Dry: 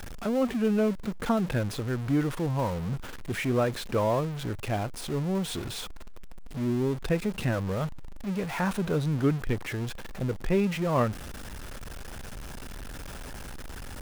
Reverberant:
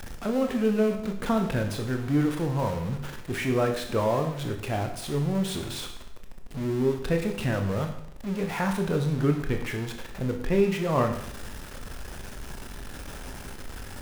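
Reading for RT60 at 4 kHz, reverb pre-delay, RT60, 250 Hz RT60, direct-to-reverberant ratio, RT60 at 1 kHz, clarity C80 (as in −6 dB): 0.70 s, 20 ms, 0.75 s, 0.75 s, 4.0 dB, 0.70 s, 10.5 dB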